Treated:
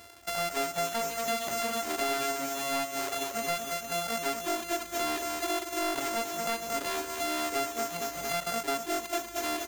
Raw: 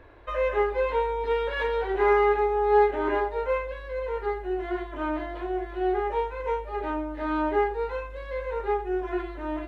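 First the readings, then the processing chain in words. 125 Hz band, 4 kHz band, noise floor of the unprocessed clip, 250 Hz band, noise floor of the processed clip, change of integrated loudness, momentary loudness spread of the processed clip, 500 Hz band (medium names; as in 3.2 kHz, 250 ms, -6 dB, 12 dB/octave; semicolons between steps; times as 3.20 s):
no reading, +11.0 dB, -39 dBFS, -5.0 dB, -43 dBFS, -4.0 dB, 2 LU, -8.5 dB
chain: sorted samples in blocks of 64 samples; reverb removal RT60 1.7 s; high-pass 86 Hz 12 dB/octave; treble shelf 2.2 kHz +8.5 dB; on a send: feedback delay 228 ms, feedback 53%, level -9.5 dB; on the sum: level rider; saturation -15.5 dBFS, distortion -9 dB; compression 2.5:1, threshold -31 dBFS, peak gain reduction 8.5 dB; bass shelf 220 Hz -5.5 dB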